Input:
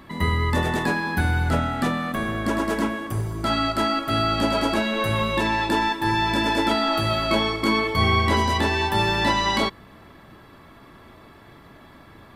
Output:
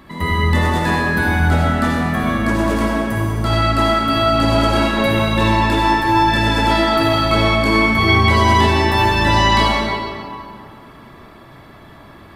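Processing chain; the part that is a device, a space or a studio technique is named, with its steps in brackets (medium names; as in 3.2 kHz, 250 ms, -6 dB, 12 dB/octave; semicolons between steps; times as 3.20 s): stairwell (reverberation RT60 2.4 s, pre-delay 49 ms, DRR -3 dB); trim +1.5 dB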